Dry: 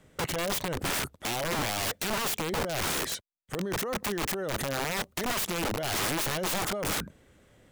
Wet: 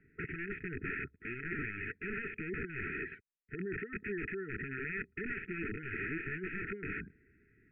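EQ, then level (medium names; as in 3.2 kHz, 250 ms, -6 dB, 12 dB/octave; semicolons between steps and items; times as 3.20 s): brick-wall FIR band-stop 450–1300 Hz; rippled Chebyshev low-pass 2.6 kHz, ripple 9 dB; +1.0 dB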